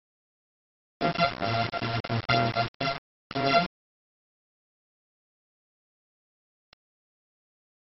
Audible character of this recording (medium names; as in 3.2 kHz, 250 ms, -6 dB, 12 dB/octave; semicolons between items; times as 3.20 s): a buzz of ramps at a fixed pitch in blocks of 64 samples; phasing stages 12, 3 Hz, lowest notch 300–4600 Hz; a quantiser's noise floor 6-bit, dither none; MP2